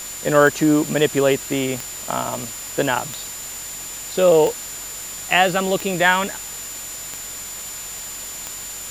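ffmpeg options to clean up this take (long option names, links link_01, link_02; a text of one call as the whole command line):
ffmpeg -i in.wav -af "adeclick=threshold=4,bandreject=frequency=46.1:width_type=h:width=4,bandreject=frequency=92.2:width_type=h:width=4,bandreject=frequency=138.3:width_type=h:width=4,bandreject=frequency=184.4:width_type=h:width=4,bandreject=frequency=230.5:width_type=h:width=4,bandreject=frequency=7100:width=30,afftdn=noise_reduction=30:noise_floor=-32" out.wav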